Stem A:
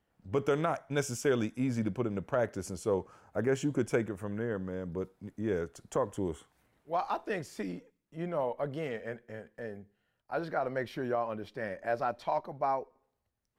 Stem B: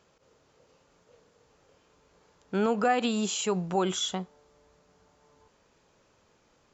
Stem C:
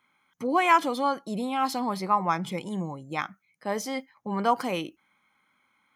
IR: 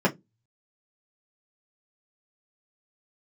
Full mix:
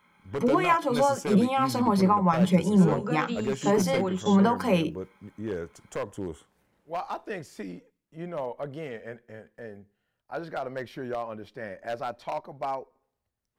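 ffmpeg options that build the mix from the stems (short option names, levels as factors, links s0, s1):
-filter_complex "[0:a]aeval=exprs='0.0708*(abs(mod(val(0)/0.0708+3,4)-2)-1)':c=same,volume=0.944[s0];[1:a]adelay=250,volume=0.355,asplit=2[s1][s2];[s2]volume=0.119[s3];[2:a]acompressor=threshold=0.0447:ratio=6,volume=1.33,asplit=3[s4][s5][s6];[s5]volume=0.158[s7];[s6]apad=whole_len=307930[s8];[s1][s8]sidechaingate=range=0.224:threshold=0.00141:ratio=16:detection=peak[s9];[3:a]atrim=start_sample=2205[s10];[s3][s7]amix=inputs=2:normalize=0[s11];[s11][s10]afir=irnorm=-1:irlink=0[s12];[s0][s9][s4][s12]amix=inputs=4:normalize=0"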